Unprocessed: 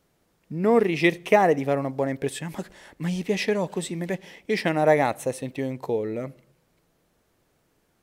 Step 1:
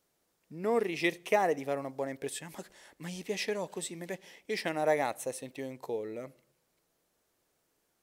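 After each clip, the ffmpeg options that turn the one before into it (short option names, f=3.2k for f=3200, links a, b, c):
-af "bass=f=250:g=-8,treble=f=4k:g=6,volume=-8.5dB"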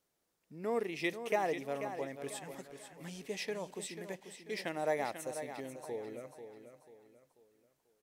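-af "aecho=1:1:490|980|1470|1960:0.335|0.124|0.0459|0.017,volume=-5.5dB"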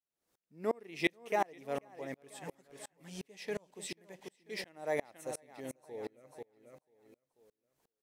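-af "aeval=exprs='val(0)*pow(10,-33*if(lt(mod(-2.8*n/s,1),2*abs(-2.8)/1000),1-mod(-2.8*n/s,1)/(2*abs(-2.8)/1000),(mod(-2.8*n/s,1)-2*abs(-2.8)/1000)/(1-2*abs(-2.8)/1000))/20)':c=same,volume=6.5dB"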